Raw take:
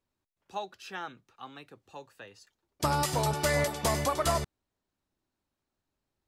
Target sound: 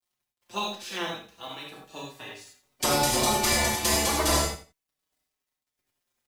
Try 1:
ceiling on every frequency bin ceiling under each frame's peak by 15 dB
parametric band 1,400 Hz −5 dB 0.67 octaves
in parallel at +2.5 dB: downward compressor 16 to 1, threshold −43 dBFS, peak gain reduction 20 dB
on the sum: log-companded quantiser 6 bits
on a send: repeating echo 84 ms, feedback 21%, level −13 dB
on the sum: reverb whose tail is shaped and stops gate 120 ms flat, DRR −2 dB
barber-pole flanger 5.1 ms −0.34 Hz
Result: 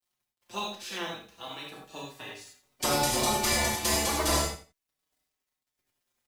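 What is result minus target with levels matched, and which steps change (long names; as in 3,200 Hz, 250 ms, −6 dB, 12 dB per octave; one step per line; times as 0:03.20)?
downward compressor: peak gain reduction +11 dB
change: downward compressor 16 to 1, threshold −31.5 dBFS, peak gain reduction 9 dB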